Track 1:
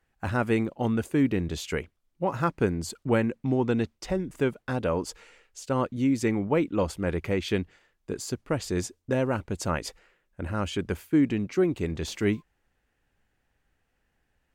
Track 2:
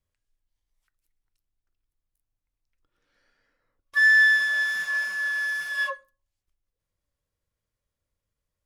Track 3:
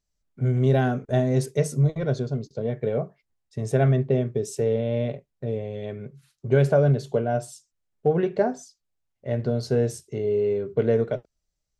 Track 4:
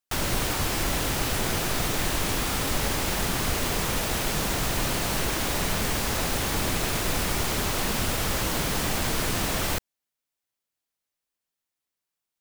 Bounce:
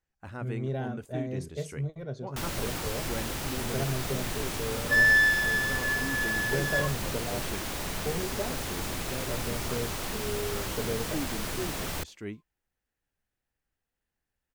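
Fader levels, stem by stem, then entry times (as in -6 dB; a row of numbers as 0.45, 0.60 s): -13.5, -3.5, -12.5, -7.5 dB; 0.00, 0.95, 0.00, 2.25 s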